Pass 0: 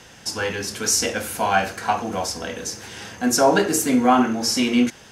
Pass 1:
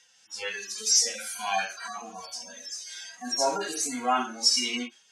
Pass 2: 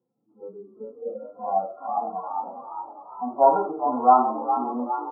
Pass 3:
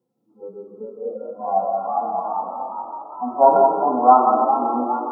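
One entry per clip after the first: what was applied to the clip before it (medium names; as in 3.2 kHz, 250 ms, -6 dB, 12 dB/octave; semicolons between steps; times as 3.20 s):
harmonic-percussive separation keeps harmonic; frequency weighting ITU-R 468; spectral noise reduction 14 dB; trim -5.5 dB
frequency-shifting echo 410 ms, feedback 63%, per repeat +54 Hz, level -9 dB; FFT band-pass 110–1400 Hz; low-pass sweep 310 Hz -> 870 Hz, 0.53–2.27 s; trim +4.5 dB
algorithmic reverb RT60 0.78 s, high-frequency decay 0.8×, pre-delay 105 ms, DRR 2.5 dB; trim +3.5 dB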